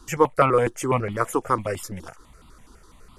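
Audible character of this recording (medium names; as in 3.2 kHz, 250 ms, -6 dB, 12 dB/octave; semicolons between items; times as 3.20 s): notches that jump at a steady rate 12 Hz 570–1700 Hz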